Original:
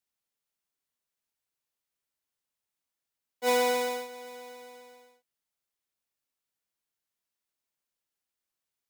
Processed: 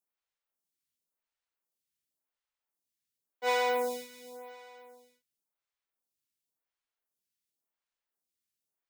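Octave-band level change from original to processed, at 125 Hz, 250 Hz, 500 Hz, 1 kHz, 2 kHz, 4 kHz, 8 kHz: can't be measured, −7.5 dB, −3.0 dB, −1.0 dB, −1.0 dB, −4.0 dB, −7.5 dB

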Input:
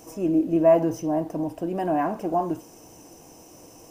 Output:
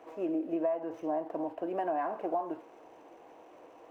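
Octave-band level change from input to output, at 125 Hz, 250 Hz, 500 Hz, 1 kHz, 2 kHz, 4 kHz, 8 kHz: −22.5 dB, −11.5 dB, −10.5 dB, −7.5 dB, −7.5 dB, can't be measured, below −25 dB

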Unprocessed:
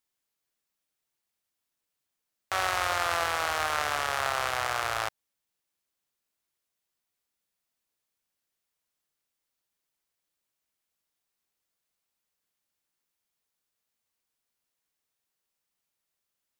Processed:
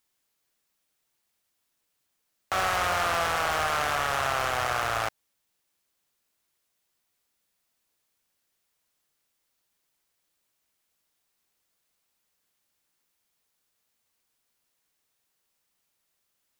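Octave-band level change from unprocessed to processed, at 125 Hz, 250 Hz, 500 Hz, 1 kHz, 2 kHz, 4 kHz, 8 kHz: +6.0, +6.0, +3.0, +2.5, +1.5, +0.5, +0.5 decibels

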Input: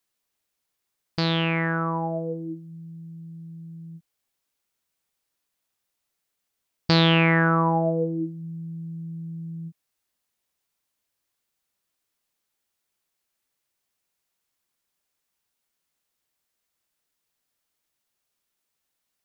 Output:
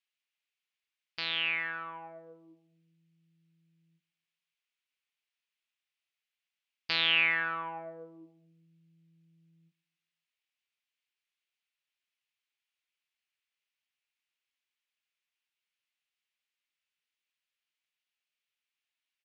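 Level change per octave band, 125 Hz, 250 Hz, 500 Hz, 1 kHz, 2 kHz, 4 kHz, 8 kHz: −31.5 dB, −27.5 dB, −20.5 dB, −13.5 dB, −4.0 dB, −3.5 dB, can't be measured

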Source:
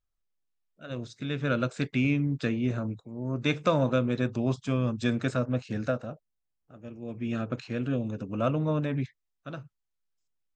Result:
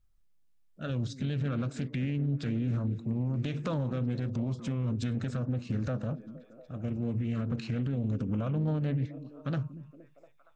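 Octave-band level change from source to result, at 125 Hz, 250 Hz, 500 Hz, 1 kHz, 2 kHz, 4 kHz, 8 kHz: +1.0 dB, −3.0 dB, −8.5 dB, −9.5 dB, −10.5 dB, −7.0 dB, can't be measured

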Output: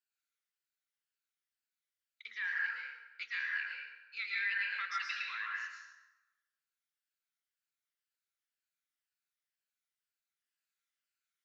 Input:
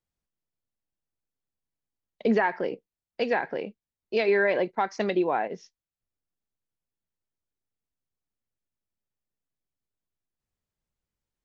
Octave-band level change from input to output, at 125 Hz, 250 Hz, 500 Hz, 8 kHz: below −40 dB, below −40 dB, below −40 dB, can't be measured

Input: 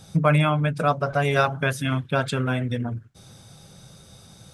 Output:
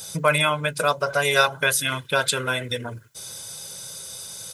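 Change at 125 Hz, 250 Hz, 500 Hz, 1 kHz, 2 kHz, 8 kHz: −9.0, −8.5, +1.0, +0.5, +5.0, +15.0 decibels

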